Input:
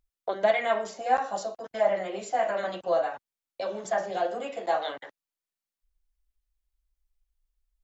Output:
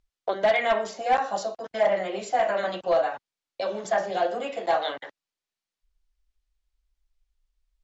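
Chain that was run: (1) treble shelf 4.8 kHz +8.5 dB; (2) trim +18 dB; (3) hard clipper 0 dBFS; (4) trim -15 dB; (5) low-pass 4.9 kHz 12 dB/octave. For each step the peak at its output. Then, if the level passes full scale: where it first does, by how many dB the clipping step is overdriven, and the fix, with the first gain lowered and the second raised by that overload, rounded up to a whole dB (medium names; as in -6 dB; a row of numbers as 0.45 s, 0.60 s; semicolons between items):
-9.5 dBFS, +8.5 dBFS, 0.0 dBFS, -15.0 dBFS, -14.5 dBFS; step 2, 8.5 dB; step 2 +9 dB, step 4 -6 dB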